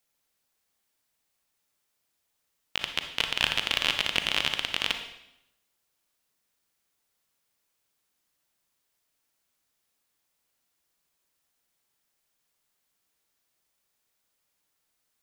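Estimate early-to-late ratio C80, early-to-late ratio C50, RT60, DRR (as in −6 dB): 10.5 dB, 7.5 dB, 0.85 s, 6.0 dB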